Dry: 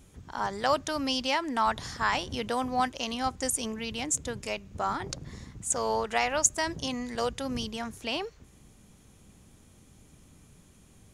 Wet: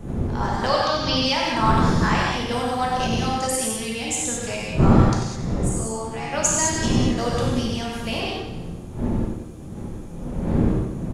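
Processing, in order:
wind on the microphone 210 Hz −30 dBFS
0:00.68–0:01.17: high shelf with overshoot 6,300 Hz −13 dB, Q 3
0:05.69–0:06.33: tuned comb filter 75 Hz, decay 0.52 s, harmonics all, mix 90%
repeating echo 93 ms, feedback 55%, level −9.5 dB
reverb whose tail is shaped and stops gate 240 ms flat, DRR −4.5 dB

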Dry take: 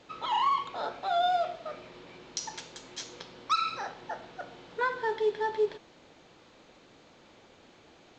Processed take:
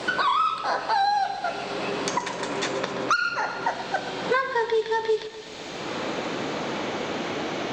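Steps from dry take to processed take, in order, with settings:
gliding playback speed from 117% → 95%
feedback echo with a high-pass in the loop 125 ms, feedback 52%, high-pass 420 Hz, level −13.5 dB
multiband upward and downward compressor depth 100%
level +6.5 dB

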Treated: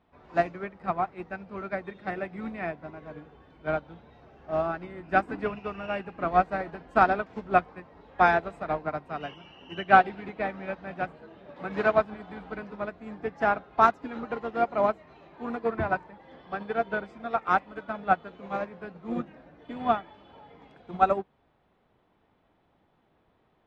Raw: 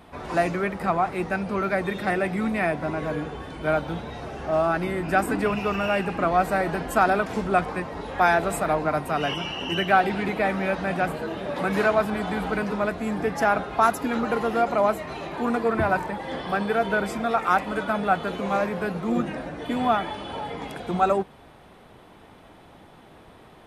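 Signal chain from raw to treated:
high-frequency loss of the air 150 metres
expander for the loud parts 2.5 to 1, over −30 dBFS
level +3.5 dB

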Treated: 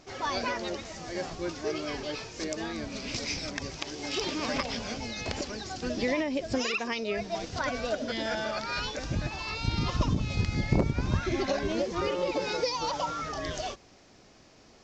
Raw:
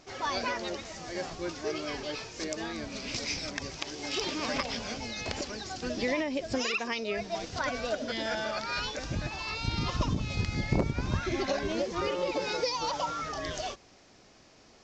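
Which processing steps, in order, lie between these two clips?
low-shelf EQ 480 Hz +3 dB

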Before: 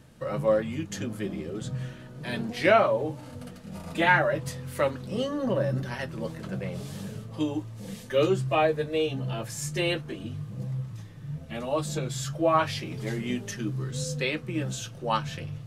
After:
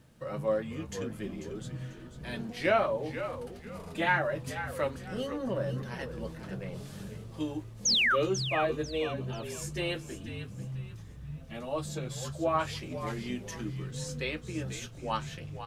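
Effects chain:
sound drawn into the spectrogram fall, 0:07.85–0:08.16, 1,100–6,900 Hz −19 dBFS
echo with shifted repeats 492 ms, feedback 31%, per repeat −69 Hz, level −10.5 dB
bit-depth reduction 12 bits, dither none
level −6 dB

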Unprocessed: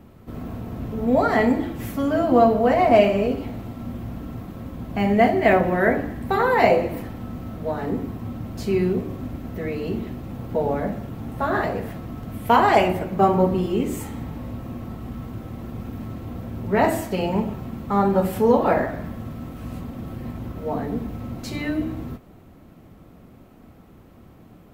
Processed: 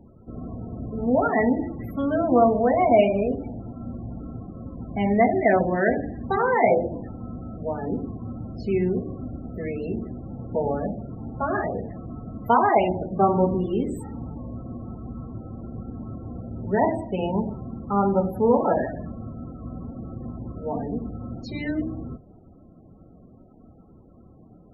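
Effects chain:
hum removal 49.44 Hz, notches 3
spectral peaks only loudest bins 32
level −2 dB

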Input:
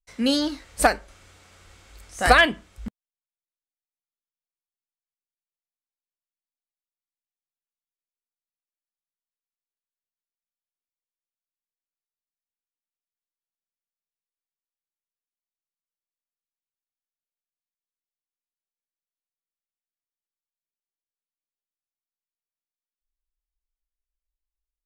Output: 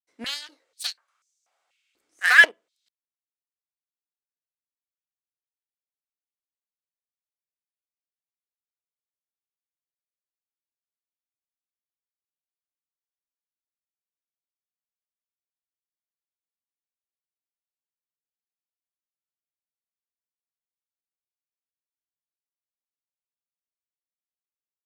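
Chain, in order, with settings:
harmonic generator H 7 −18 dB, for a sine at −5 dBFS
high-pass on a step sequencer 4.1 Hz 310–6,200 Hz
level −5 dB

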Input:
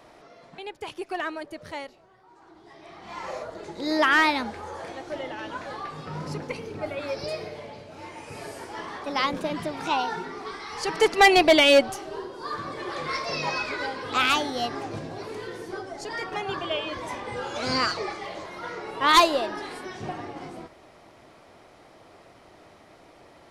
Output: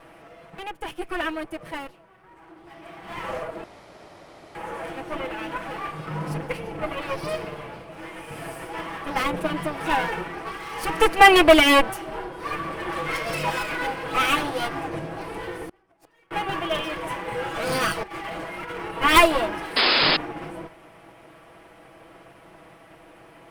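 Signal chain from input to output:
lower of the sound and its delayed copy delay 6.1 ms
flat-topped bell 5,200 Hz −9.5 dB 1.2 octaves
0:03.64–0:04.55: fill with room tone
0:15.67–0:16.31: gate with flip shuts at −32 dBFS, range −31 dB
0:18.03–0:18.90: compressor whose output falls as the input rises −38 dBFS, ratio −0.5
0:19.76–0:20.17: sound drawn into the spectrogram noise 220–5,200 Hz −24 dBFS
level +5 dB

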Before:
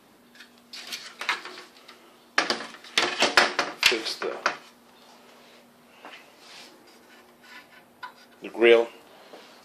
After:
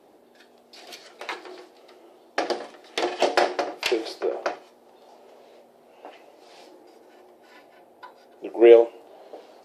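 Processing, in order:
flat-topped bell 510 Hz +13 dB
level −7.5 dB

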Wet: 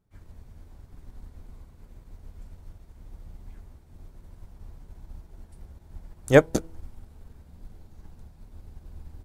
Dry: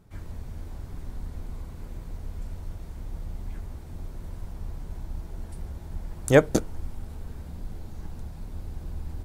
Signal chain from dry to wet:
hum removal 163.6 Hz, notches 6
expander for the loud parts 1.5 to 1, over −47 dBFS
level +2 dB

